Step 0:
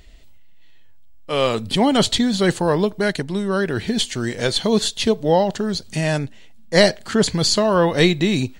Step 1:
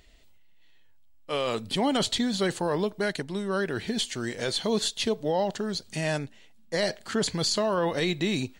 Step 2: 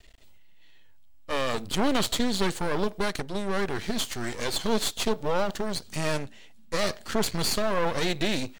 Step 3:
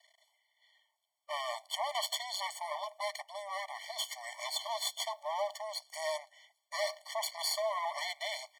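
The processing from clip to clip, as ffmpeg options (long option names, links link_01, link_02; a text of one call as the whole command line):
ffmpeg -i in.wav -af "lowshelf=frequency=180:gain=-7,alimiter=limit=-11dB:level=0:latency=1:release=22,volume=-6dB" out.wav
ffmpeg -i in.wav -af "aeval=exprs='max(val(0),0)':channel_layout=same,volume=5dB" out.wav
ffmpeg -i in.wav -af "afftfilt=real='re*eq(mod(floor(b*sr/1024/590),2),1)':imag='im*eq(mod(floor(b*sr/1024/590),2),1)':win_size=1024:overlap=0.75,volume=-4dB" out.wav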